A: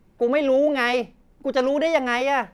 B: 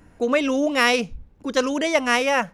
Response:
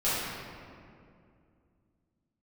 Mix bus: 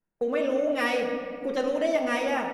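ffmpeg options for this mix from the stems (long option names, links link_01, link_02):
-filter_complex "[0:a]equalizer=frequency=1000:width_type=o:width=1:gain=-8,equalizer=frequency=2000:width_type=o:width=1:gain=-5,equalizer=frequency=4000:width_type=o:width=1:gain=-5,acompressor=threshold=-23dB:ratio=3,volume=-2.5dB,asplit=3[link_01][link_02][link_03];[link_02]volume=-12dB[link_04];[1:a]highpass=580,equalizer=frequency=4700:width=1.2:gain=-14,adelay=6.8,volume=-5dB,asplit=2[link_05][link_06];[link_06]volume=-23dB[link_07];[link_03]apad=whole_len=112266[link_08];[link_05][link_08]sidechaincompress=threshold=-33dB:ratio=8:attack=16:release=390[link_09];[2:a]atrim=start_sample=2205[link_10];[link_04][link_07]amix=inputs=2:normalize=0[link_11];[link_11][link_10]afir=irnorm=-1:irlink=0[link_12];[link_01][link_09][link_12]amix=inputs=3:normalize=0,agate=range=-27dB:threshold=-36dB:ratio=16:detection=peak,lowshelf=frequency=280:gain=-5.5"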